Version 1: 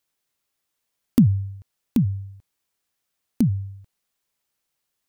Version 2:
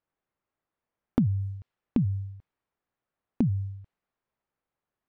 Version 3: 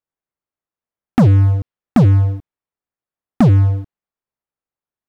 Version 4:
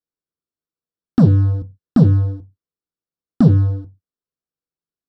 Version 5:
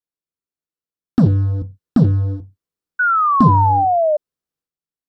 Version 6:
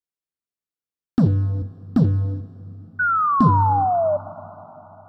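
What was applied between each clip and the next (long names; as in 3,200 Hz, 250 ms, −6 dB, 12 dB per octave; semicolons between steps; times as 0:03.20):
low-pass that shuts in the quiet parts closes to 1,400 Hz, open at −18 dBFS; downward compressor 4 to 1, threshold −22 dBFS, peak gain reduction 9.5 dB
leveller curve on the samples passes 5; level +3.5 dB
convolution reverb RT60 0.20 s, pre-delay 3 ms, DRR 8 dB; level −11.5 dB
transient designer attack +4 dB, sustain +8 dB; sound drawn into the spectrogram fall, 0:02.99–0:04.17, 590–1,500 Hz −11 dBFS; level −4 dB
dense smooth reverb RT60 4.7 s, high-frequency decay 0.75×, DRR 17 dB; level −4 dB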